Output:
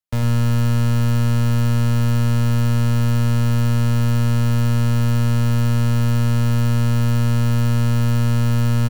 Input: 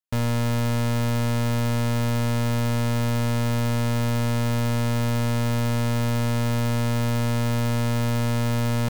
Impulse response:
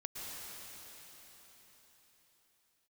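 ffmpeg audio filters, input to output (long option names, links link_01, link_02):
-filter_complex "[0:a]acrossover=split=140[link_01][link_02];[link_01]acontrast=64[link_03];[link_03][link_02]amix=inputs=2:normalize=0,aecho=1:1:101:0.376"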